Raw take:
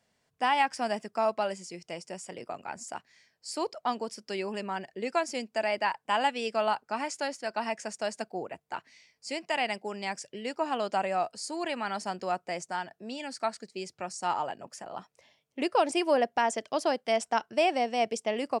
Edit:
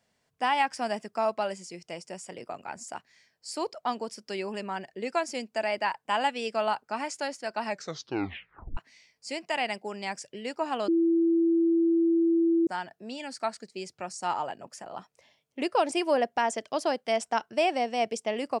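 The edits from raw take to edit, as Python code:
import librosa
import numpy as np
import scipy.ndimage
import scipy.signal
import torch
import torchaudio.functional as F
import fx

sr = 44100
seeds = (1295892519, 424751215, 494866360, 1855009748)

y = fx.edit(x, sr, fx.tape_stop(start_s=7.64, length_s=1.13),
    fx.bleep(start_s=10.88, length_s=1.79, hz=333.0, db=-20.0), tone=tone)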